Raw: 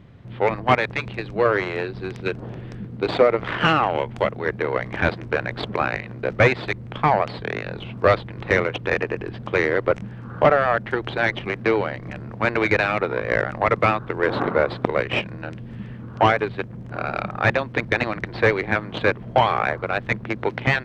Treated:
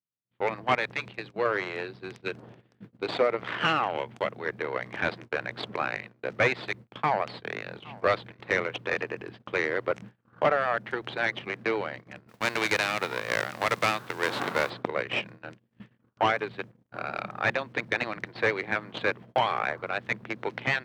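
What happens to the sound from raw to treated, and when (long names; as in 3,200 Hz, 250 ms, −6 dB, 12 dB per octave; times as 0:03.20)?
0:06.85–0:09.12: single-tap delay 815 ms −20 dB
0:12.28–0:14.69: spectral envelope flattened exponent 0.6
whole clip: high-pass filter 110 Hz 12 dB per octave; noise gate −33 dBFS, range −45 dB; spectral tilt +1.5 dB per octave; level −7 dB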